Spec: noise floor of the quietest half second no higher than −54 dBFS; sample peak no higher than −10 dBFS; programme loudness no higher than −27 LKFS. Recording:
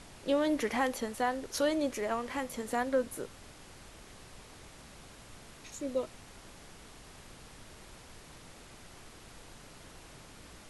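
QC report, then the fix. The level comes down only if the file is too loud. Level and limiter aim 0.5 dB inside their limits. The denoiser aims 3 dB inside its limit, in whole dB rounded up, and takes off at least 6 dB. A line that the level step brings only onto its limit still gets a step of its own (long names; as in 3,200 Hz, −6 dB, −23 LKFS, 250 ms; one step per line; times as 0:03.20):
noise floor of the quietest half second −52 dBFS: out of spec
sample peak −18.0 dBFS: in spec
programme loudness −33.0 LKFS: in spec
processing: broadband denoise 6 dB, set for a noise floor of −52 dBFS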